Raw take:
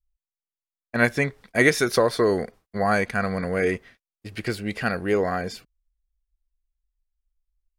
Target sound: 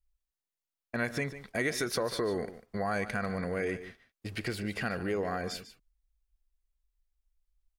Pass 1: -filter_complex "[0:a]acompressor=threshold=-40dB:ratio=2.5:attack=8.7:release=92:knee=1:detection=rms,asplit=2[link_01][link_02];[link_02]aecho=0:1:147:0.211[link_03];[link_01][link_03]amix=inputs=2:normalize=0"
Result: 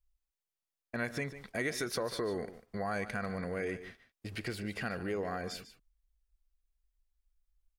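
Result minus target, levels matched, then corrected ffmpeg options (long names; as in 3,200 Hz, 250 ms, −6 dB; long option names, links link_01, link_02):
downward compressor: peak gain reduction +3.5 dB
-filter_complex "[0:a]acompressor=threshold=-34dB:ratio=2.5:attack=8.7:release=92:knee=1:detection=rms,asplit=2[link_01][link_02];[link_02]aecho=0:1:147:0.211[link_03];[link_01][link_03]amix=inputs=2:normalize=0"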